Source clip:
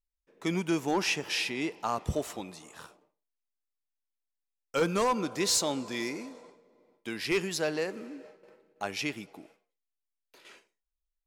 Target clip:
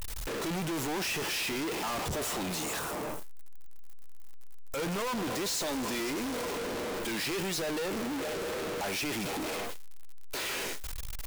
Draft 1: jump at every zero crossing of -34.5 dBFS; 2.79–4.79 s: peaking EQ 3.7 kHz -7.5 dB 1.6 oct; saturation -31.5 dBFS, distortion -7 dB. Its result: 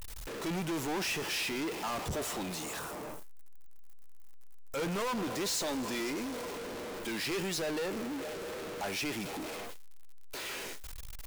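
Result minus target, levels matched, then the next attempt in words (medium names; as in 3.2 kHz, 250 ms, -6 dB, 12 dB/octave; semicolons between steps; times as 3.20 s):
jump at every zero crossing: distortion -5 dB
jump at every zero crossing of -27 dBFS; 2.79–4.79 s: peaking EQ 3.7 kHz -7.5 dB 1.6 oct; saturation -31.5 dBFS, distortion -8 dB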